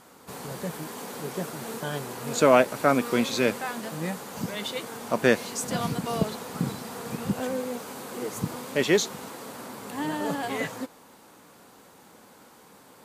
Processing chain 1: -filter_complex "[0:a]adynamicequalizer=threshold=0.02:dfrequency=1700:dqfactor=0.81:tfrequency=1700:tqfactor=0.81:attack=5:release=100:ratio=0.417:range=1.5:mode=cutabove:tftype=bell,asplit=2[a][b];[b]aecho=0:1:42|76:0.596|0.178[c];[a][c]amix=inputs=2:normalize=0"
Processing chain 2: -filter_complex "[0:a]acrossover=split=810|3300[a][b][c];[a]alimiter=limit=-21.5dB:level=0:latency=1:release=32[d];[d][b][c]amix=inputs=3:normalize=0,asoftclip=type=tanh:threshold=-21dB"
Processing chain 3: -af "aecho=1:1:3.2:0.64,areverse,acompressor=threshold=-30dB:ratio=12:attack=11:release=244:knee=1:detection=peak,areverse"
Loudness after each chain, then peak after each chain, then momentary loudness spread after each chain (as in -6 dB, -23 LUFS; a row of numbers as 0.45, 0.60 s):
-27.0, -32.5, -35.0 LUFS; -3.5, -21.0, -20.0 dBFS; 14, 23, 18 LU